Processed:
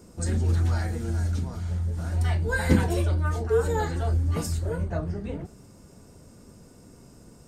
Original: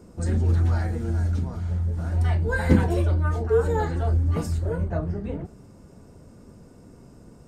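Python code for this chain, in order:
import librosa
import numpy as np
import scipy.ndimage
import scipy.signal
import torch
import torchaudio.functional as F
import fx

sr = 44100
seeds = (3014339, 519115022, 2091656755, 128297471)

y = fx.high_shelf(x, sr, hz=2700.0, db=10.0)
y = y * 10.0 ** (-2.5 / 20.0)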